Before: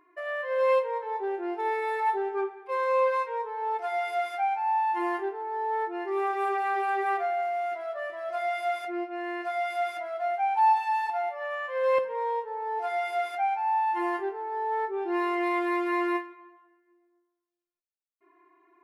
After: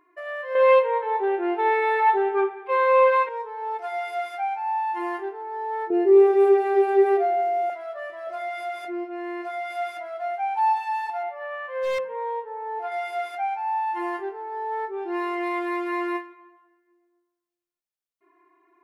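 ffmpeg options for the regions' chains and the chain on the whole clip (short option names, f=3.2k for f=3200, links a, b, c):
-filter_complex "[0:a]asettb=1/sr,asplit=3[a][b][c];[a]atrim=end=0.554[d];[b]atrim=start=0.55:end=3.29,asetpts=PTS-STARTPTS,afade=t=in:d=0.004:c=qsin,afade=t=out:st=2.736:d=0.004:c=qsin,highshelf=f=4.3k:t=q:w=1.5:g=-9.5,acontrast=83[e];[c]atrim=start=3.286[f];[d][e]acrossfade=d=0.004:c1=hsin:c2=qsin[g];[g][f]acrossfade=d=0.004:c1=qsin:c2=hsin,asettb=1/sr,asplit=3[h][i][j];[h]atrim=end=5.904[k];[i]atrim=start=5.9:end=7.7,asetpts=PTS-STARTPTS,afade=t=in:d=0.004:c=qsin,afade=t=out:st=1.796:d=0.004:c=qsin,highpass=290,lowshelf=f=700:t=q:w=3:g=12[l];[j]atrim=start=7.696[m];[k][l]acrossfade=d=0.004:c1=hsin:c2=qsin[n];[n][m]acrossfade=d=0.004:c1=qsin:c2=hsin,asettb=1/sr,asplit=3[o][p][q];[o]atrim=end=8.274[r];[p]atrim=start=8.27:end=9.72,asetpts=PTS-STARTPTS,afade=t=in:d=0.004:c=qsin,afade=t=out:st=1.446:d=0.004:c=qsin,equalizer=f=320:w=0.77:g=6.5,acompressor=threshold=-31dB:ratio=1.5:attack=3.2:release=140:knee=1:detection=peak,asplit=2[s][t];[t]adelay=22,volume=-11dB[u];[s][u]amix=inputs=2:normalize=0,atrim=end_sample=63945[v];[q]atrim=start=9.716[w];[r][v]acrossfade=d=0.004:c1=hsin:c2=qsin[x];[x][w]acrossfade=d=0.004:c1=qsin:c2=hsin,asettb=1/sr,asplit=3[y][z][aa];[y]atrim=end=11.234[ab];[z]atrim=start=11.23:end=12.92,asetpts=PTS-STARTPTS,afade=t=in:d=0.004:c=qsin,afade=t=out:st=1.686:d=0.004:c=qsin,bass=f=250:g=5,treble=f=4k:g=-11,aeval=exprs='0.0944*(abs(mod(val(0)/0.0944+3,4)-2)-1)':c=same[ac];[aa]atrim=start=12.916[ad];[ab][ac]acrossfade=d=0.004:c1=hsin:c2=qsin[ae];[ae][ad]acrossfade=d=0.004:c1=qsin:c2=hsin"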